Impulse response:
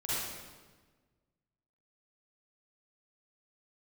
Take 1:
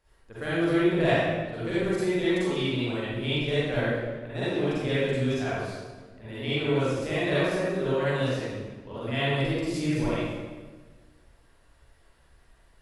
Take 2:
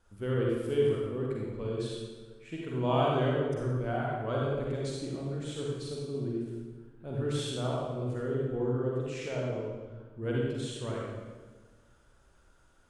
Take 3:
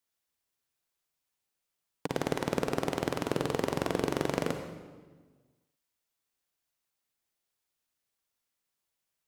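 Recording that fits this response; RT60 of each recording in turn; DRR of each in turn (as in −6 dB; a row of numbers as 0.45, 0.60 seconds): 1; 1.4, 1.4, 1.4 seconds; −11.0, −4.0, 6.0 decibels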